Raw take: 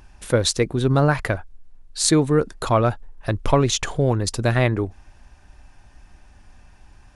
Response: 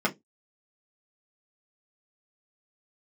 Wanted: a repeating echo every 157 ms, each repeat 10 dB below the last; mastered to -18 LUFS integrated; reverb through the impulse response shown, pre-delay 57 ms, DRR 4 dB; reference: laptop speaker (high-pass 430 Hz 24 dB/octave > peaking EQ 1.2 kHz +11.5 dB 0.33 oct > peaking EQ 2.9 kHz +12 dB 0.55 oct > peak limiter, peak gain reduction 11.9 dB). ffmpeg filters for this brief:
-filter_complex "[0:a]aecho=1:1:157|314|471|628:0.316|0.101|0.0324|0.0104,asplit=2[s0][s1];[1:a]atrim=start_sample=2205,adelay=57[s2];[s1][s2]afir=irnorm=-1:irlink=0,volume=0.168[s3];[s0][s3]amix=inputs=2:normalize=0,highpass=f=430:w=0.5412,highpass=f=430:w=1.3066,equalizer=f=1200:t=o:w=0.33:g=11.5,equalizer=f=2900:t=o:w=0.55:g=12,volume=2.11,alimiter=limit=0.422:level=0:latency=1"

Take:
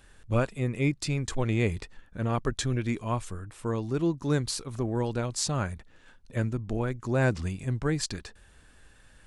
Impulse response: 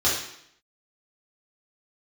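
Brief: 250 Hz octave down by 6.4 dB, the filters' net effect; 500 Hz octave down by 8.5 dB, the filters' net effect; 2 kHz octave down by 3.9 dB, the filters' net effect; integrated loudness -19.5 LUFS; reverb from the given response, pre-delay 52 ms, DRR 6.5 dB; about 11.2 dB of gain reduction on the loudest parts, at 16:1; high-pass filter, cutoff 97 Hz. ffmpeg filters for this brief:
-filter_complex "[0:a]highpass=97,equalizer=f=250:t=o:g=-5.5,equalizer=f=500:t=o:g=-9,equalizer=f=2000:t=o:g=-4.5,acompressor=threshold=0.0158:ratio=16,asplit=2[s0][s1];[1:a]atrim=start_sample=2205,adelay=52[s2];[s1][s2]afir=irnorm=-1:irlink=0,volume=0.0891[s3];[s0][s3]amix=inputs=2:normalize=0,volume=10.6"

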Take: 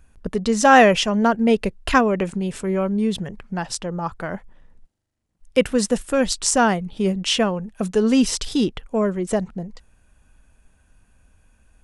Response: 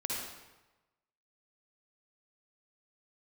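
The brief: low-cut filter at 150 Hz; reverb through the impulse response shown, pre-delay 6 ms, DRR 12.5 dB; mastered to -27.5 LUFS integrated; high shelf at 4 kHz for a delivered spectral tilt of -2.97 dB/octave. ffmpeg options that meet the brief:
-filter_complex "[0:a]highpass=150,highshelf=f=4000:g=8,asplit=2[s0][s1];[1:a]atrim=start_sample=2205,adelay=6[s2];[s1][s2]afir=irnorm=-1:irlink=0,volume=0.15[s3];[s0][s3]amix=inputs=2:normalize=0,volume=0.376"

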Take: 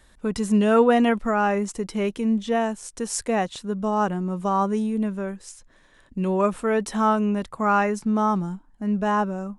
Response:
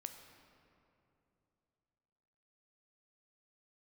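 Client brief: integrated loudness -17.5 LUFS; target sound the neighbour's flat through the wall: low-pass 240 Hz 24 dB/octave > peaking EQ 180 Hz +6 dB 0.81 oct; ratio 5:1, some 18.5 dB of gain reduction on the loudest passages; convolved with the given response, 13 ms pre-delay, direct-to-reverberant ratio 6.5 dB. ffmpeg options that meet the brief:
-filter_complex "[0:a]acompressor=threshold=0.0178:ratio=5,asplit=2[s0][s1];[1:a]atrim=start_sample=2205,adelay=13[s2];[s1][s2]afir=irnorm=-1:irlink=0,volume=0.75[s3];[s0][s3]amix=inputs=2:normalize=0,lowpass=f=240:w=0.5412,lowpass=f=240:w=1.3066,equalizer=f=180:t=o:w=0.81:g=6,volume=9.44"

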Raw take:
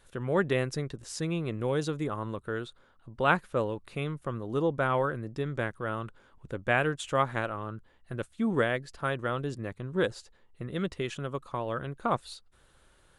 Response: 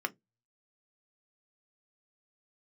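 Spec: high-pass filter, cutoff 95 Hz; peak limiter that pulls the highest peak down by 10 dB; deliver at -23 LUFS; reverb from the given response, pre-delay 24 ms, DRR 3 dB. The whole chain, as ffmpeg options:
-filter_complex "[0:a]highpass=95,alimiter=limit=0.126:level=0:latency=1,asplit=2[s0][s1];[1:a]atrim=start_sample=2205,adelay=24[s2];[s1][s2]afir=irnorm=-1:irlink=0,volume=0.422[s3];[s0][s3]amix=inputs=2:normalize=0,volume=2.66"

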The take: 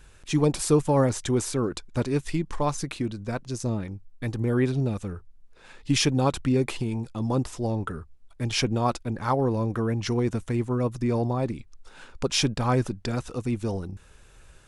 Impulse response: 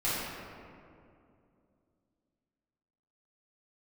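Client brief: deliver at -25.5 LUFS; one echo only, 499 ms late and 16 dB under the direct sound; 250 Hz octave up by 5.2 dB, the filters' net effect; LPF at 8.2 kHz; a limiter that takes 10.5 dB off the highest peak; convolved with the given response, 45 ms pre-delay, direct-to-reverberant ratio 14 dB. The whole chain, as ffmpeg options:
-filter_complex "[0:a]lowpass=8200,equalizer=f=250:t=o:g=6,alimiter=limit=0.141:level=0:latency=1,aecho=1:1:499:0.158,asplit=2[s0][s1];[1:a]atrim=start_sample=2205,adelay=45[s2];[s1][s2]afir=irnorm=-1:irlink=0,volume=0.0631[s3];[s0][s3]amix=inputs=2:normalize=0,volume=1.19"

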